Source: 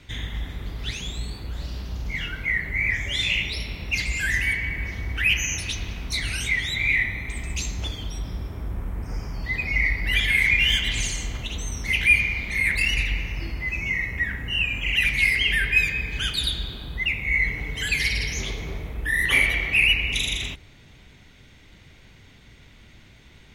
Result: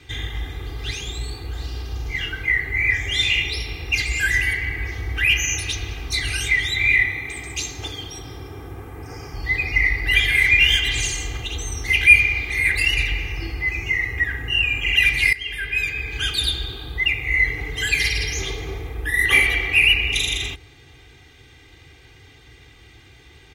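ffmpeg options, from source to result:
ffmpeg -i in.wav -filter_complex "[0:a]asettb=1/sr,asplit=3[link_01][link_02][link_03];[link_01]atrim=end=7.074[link_04];[link_02]atrim=start=7.07:end=9.33,asetpts=PTS-STARTPTS,afade=type=in:duration=0.004:curve=qsin,afade=type=out:start_time=2.256:duration=0.004:curve=qsin,highpass=110[link_05];[link_03]atrim=start=9.326[link_06];[link_04][link_05]acrossfade=duration=0.004:curve1=hsin:curve2=qsin[link_07];[link_07][link_06]acrossfade=duration=0.004:curve1=qsin:curve2=hsin,asplit=2[link_08][link_09];[link_08]atrim=end=15.33,asetpts=PTS-STARTPTS,afade=type=out:start_time=15.326:duration=0.004:curve=hsin:silence=0.149624[link_10];[link_09]atrim=start=15.33,asetpts=PTS-STARTPTS,afade=type=in:duration=1.04:silence=0.149624[link_11];[link_10][link_11]concat=n=2:v=0:a=1,highpass=60,aecho=1:1:2.5:0.95,volume=1dB" out.wav

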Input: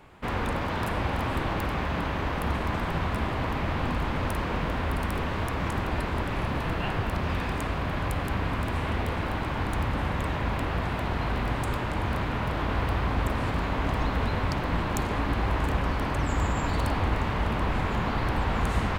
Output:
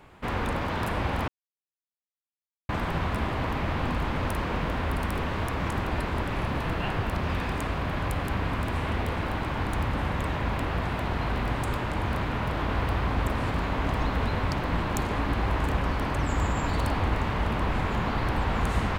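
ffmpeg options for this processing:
ffmpeg -i in.wav -filter_complex "[0:a]asplit=3[link_01][link_02][link_03];[link_01]atrim=end=1.28,asetpts=PTS-STARTPTS,afade=type=out:start_time=1.276:duration=0.004:curve=hsin[link_04];[link_02]atrim=start=1.28:end=2.69,asetpts=PTS-STARTPTS,volume=0[link_05];[link_03]atrim=start=2.69,asetpts=PTS-STARTPTS,afade=type=in:duration=0.004:curve=hsin[link_06];[link_04][link_05][link_06]concat=n=3:v=0:a=1" out.wav

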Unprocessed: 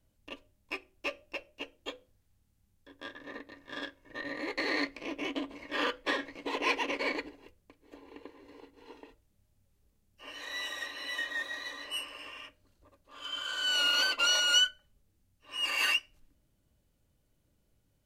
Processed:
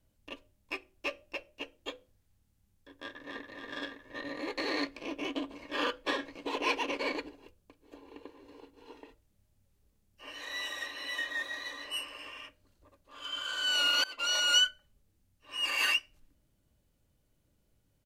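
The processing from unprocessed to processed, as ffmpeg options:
ffmpeg -i in.wav -filter_complex "[0:a]asplit=2[link_01][link_02];[link_02]afade=type=in:start_time=2.98:duration=0.01,afade=type=out:start_time=3.47:duration=0.01,aecho=0:1:280|560|840|1120|1400|1680|1960|2240|2520|2800|3080|3360:0.668344|0.467841|0.327489|0.229242|0.160469|0.112329|0.07863|0.055041|0.0385287|0.0269701|0.0188791|0.0132153[link_03];[link_01][link_03]amix=inputs=2:normalize=0,asettb=1/sr,asplit=3[link_04][link_05][link_06];[link_04]atrim=end=4.184[link_07];[link_05]atrim=start=4.18:end=8.94,asetpts=PTS-STARTPTS,afade=type=in:duration=0.004:curve=qsin,afade=type=out:start_time=4.756:duration=0.004:curve=qsin,equalizer=frequency=2000:width=7.2:gain=-9.5[link_08];[link_06]atrim=start=8.936[link_09];[link_07][link_08]acrossfade=duration=0.004:curve1=hsin:curve2=qsin[link_10];[link_10][link_09]acrossfade=duration=0.004:curve1=qsin:curve2=hsin,asplit=2[link_11][link_12];[link_11]atrim=end=14.04,asetpts=PTS-STARTPTS,afade=type=out:start_time=14.036:duration=0.004:curve=hsin:silence=0.0841395[link_13];[link_12]atrim=start=14.04,asetpts=PTS-STARTPTS,afade=type=in:duration=0.42:silence=0.0841395[link_14];[link_13][link_14]concat=n=2:v=0:a=1" out.wav

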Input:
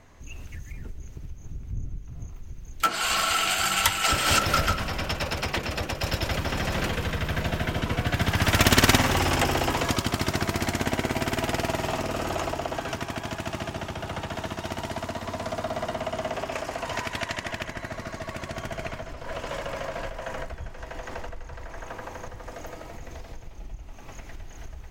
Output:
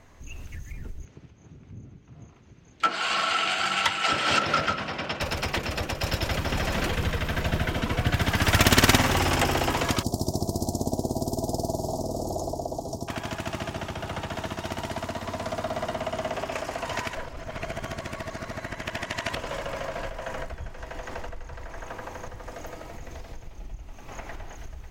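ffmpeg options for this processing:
ffmpeg -i in.wav -filter_complex "[0:a]asettb=1/sr,asplit=3[link_01][link_02][link_03];[link_01]atrim=end=1.054[link_04];[link_02]atrim=start=1.05:end=5.21,asetpts=PTS-STARTPTS,afade=type=in:duration=0.004:curve=qsin,afade=type=out:start_time=4.156:duration=0.004:curve=qsin,highpass=160,lowpass=4400[link_05];[link_03]atrim=start=5.206[link_06];[link_04][link_05]acrossfade=duration=0.004:curve1=hsin:curve2=qsin[link_07];[link_07][link_06]acrossfade=duration=0.004:curve1=qsin:curve2=hsin,asettb=1/sr,asplit=3[link_08][link_09][link_10];[link_08]atrim=end=6.514[link_11];[link_09]atrim=start=6.51:end=8.58,asetpts=PTS-STARTPTS,afade=type=in:duration=0.004:curve=qsin,afade=type=out:start_time=2.066:duration=0.004:curve=qsin,aphaser=in_gain=1:out_gain=1:delay=4.6:decay=0.32:speed=1.9:type=triangular[link_12];[link_10]atrim=start=8.576[link_13];[link_11][link_12]acrossfade=duration=0.004:curve1=hsin:curve2=qsin[link_14];[link_14][link_13]acrossfade=duration=0.004:curve1=qsin:curve2=hsin,asettb=1/sr,asplit=3[link_15][link_16][link_17];[link_15]atrim=end=10.034[link_18];[link_16]atrim=start=10.03:end=13.08,asetpts=PTS-STARTPTS,afade=type=in:duration=0.004:curve=qsin,afade=type=out:start_time=3.046:duration=0.004:curve=qsin,asuperstop=centerf=2000:order=8:qfactor=0.51[link_19];[link_17]atrim=start=13.076[link_20];[link_18][link_19]acrossfade=duration=0.004:curve1=hsin:curve2=qsin[link_21];[link_21][link_20]acrossfade=duration=0.004:curve1=qsin:curve2=hsin,asettb=1/sr,asplit=3[link_22][link_23][link_24];[link_22]atrim=end=24.114[link_25];[link_23]atrim=start=24.11:end=24.55,asetpts=PTS-STARTPTS,afade=type=in:duration=0.004:curve=qsin,afade=type=out:start_time=0.436:duration=0.004:curve=qsin,equalizer=frequency=890:width_type=o:width=2.6:gain=9.5[link_26];[link_24]atrim=start=24.546[link_27];[link_25][link_26]acrossfade=duration=0.004:curve1=hsin:curve2=qsin[link_28];[link_28][link_27]acrossfade=duration=0.004:curve1=qsin:curve2=hsin,asplit=3[link_29][link_30][link_31];[link_29]atrim=end=17.152[link_32];[link_30]atrim=start=17.148:end=19.352,asetpts=PTS-STARTPTS,areverse[link_33];[link_31]atrim=start=19.348[link_34];[link_32][link_33]acrossfade=duration=0.004:curve1=hsin:curve2=hsin[link_35];[link_35][link_34]acrossfade=duration=0.004:curve1=hsin:curve2=hsin" out.wav

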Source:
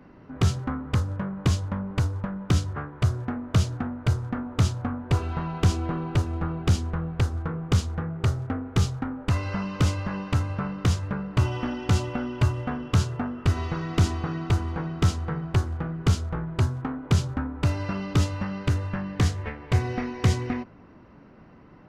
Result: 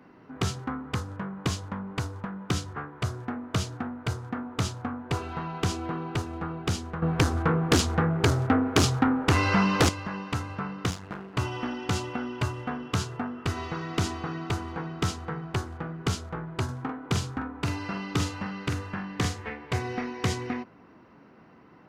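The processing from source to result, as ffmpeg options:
ffmpeg -i in.wav -filter_complex "[0:a]asettb=1/sr,asplit=3[link_01][link_02][link_03];[link_01]atrim=end=7.024[link_04];[link_02]atrim=start=7.02:end=9.89,asetpts=PTS-STARTPTS,afade=type=in:duration=0.004:curve=qsin,afade=type=out:start_time=2.866:duration=0.004:curve=qsin,aeval=exprs='0.299*sin(PI/2*2.51*val(0)/0.299)':channel_layout=same[link_05];[link_03]atrim=start=9.886[link_06];[link_04][link_05]acrossfade=duration=0.004:curve1=hsin:curve2=qsin[link_07];[link_07][link_06]acrossfade=duration=0.004:curve1=qsin:curve2=hsin,asettb=1/sr,asplit=3[link_08][link_09][link_10];[link_08]atrim=end=10.904[link_11];[link_09]atrim=start=10.9:end=11.34,asetpts=PTS-STARTPTS,afade=type=in:duration=0.004:curve=qsin,afade=type=out:start_time=0.436:duration=0.004:curve=qsin,aeval=exprs='max(val(0),0)':channel_layout=same[link_12];[link_10]atrim=start=11.336[link_13];[link_11][link_12]acrossfade=duration=0.004:curve1=hsin:curve2=qsin[link_14];[link_14][link_13]acrossfade=duration=0.004:curve1=qsin:curve2=hsin,asettb=1/sr,asplit=3[link_15][link_16][link_17];[link_15]atrim=end=16.644[link_18];[link_16]atrim=start=16.64:end=19.64,asetpts=PTS-STARTPTS,afade=type=in:duration=0.004:curve=qsin,afade=type=out:start_time=2.996:duration=0.004:curve=qsin,asplit=2[link_19][link_20];[link_20]adelay=45,volume=-7dB[link_21];[link_19][link_21]amix=inputs=2:normalize=0,atrim=end_sample=132300[link_22];[link_17]atrim=start=19.636[link_23];[link_18][link_22]acrossfade=duration=0.004:curve1=hsin:curve2=qsin[link_24];[link_24][link_23]acrossfade=duration=0.004:curve1=qsin:curve2=hsin,highpass=frequency=260:poles=1,bandreject=frequency=580:width=12" out.wav

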